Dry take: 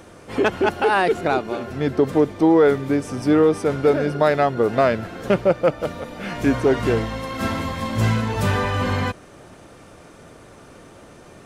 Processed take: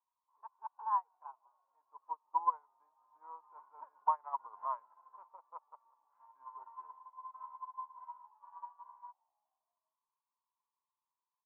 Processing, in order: Doppler pass-by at 4.37 s, 12 m/s, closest 8.6 m; peak limiter -17.5 dBFS, peak gain reduction 10.5 dB; Butterworth band-pass 990 Hz, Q 6.6; on a send: frequency-shifting echo 162 ms, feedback 64%, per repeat -66 Hz, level -21.5 dB; on the sum: upward expansion 2.5:1, over -56 dBFS; trim +13.5 dB

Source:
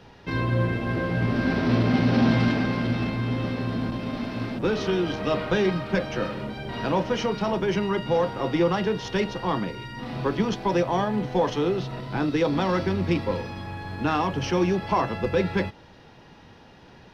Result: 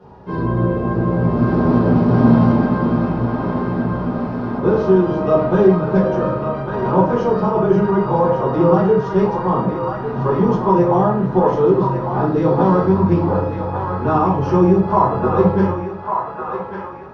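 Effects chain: high-pass 53 Hz; resonant high shelf 1.6 kHz -13.5 dB, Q 1.5; band-passed feedback delay 1150 ms, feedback 69%, band-pass 1.5 kHz, level -4 dB; reverberation RT60 0.45 s, pre-delay 5 ms, DRR -7 dB; trim -1.5 dB

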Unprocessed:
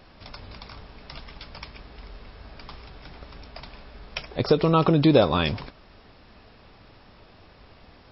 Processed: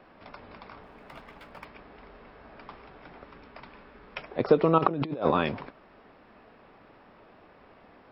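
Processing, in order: 0.82–1.65 s: dead-time distortion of 0.078 ms; 3.24–4.18 s: peaking EQ 680 Hz -7 dB 0.41 oct; 4.78–5.31 s: compressor with a negative ratio -24 dBFS, ratio -0.5; three-band isolator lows -15 dB, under 180 Hz, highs -20 dB, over 2.5 kHz

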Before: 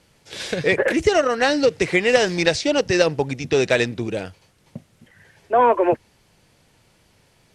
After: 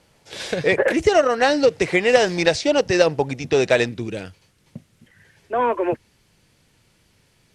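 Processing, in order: peaking EQ 720 Hz +4 dB 1.3 oct, from 3.89 s -5.5 dB; trim -1 dB

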